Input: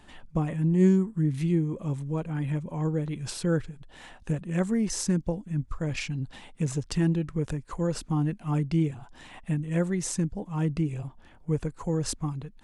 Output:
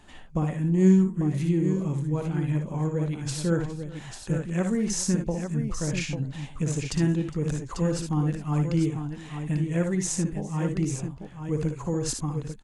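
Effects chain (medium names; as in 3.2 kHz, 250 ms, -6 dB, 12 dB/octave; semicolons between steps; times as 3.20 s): peaking EQ 6.7 kHz +6 dB 0.21 oct; multi-tap echo 59/74/410/844 ms -7/-10.5/-19.5/-7.5 dB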